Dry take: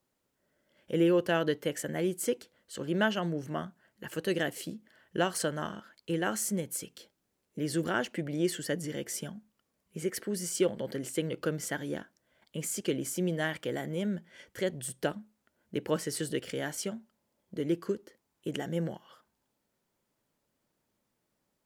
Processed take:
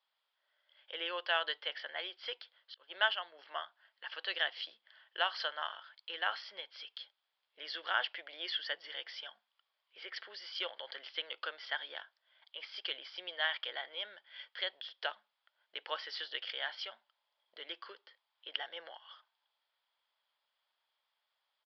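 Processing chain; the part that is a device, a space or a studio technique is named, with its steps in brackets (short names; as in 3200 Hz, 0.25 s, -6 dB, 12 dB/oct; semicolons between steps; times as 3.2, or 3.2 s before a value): 2.74–3.39 expander -26 dBFS; musical greeting card (downsampling 11025 Hz; HPF 790 Hz 24 dB/oct; bell 3300 Hz +11 dB 0.23 oct)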